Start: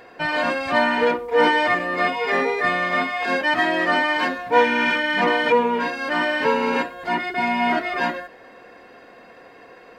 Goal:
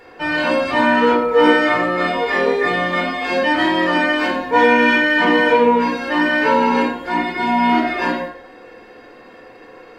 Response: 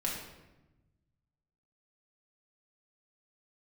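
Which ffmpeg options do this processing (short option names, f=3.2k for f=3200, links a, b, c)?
-filter_complex "[0:a]asettb=1/sr,asplit=3[a][b][c];[a]atrim=end=0.954[d];[b]atrim=start=0.95:end=2.06,asetpts=PTS-STARTPTS,afade=t=in:d=0.004:c=qsin,afade=t=out:st=1.106:d=0.004:c=qsin,aeval=exprs='val(0)+0.0251*sin(2*PI*1300*n/s)':c=same[e];[c]atrim=start=2.056[f];[d][e]acrossfade=d=0.004:c1=hsin:c2=qsin[g];[g][f]acrossfade=d=0.004:c1=qsin:c2=hsin[h];[1:a]atrim=start_sample=2205,afade=t=out:st=0.44:d=0.01,atrim=end_sample=19845,asetrate=74970,aresample=44100[i];[h][i]afir=irnorm=-1:irlink=0,volume=3.5dB"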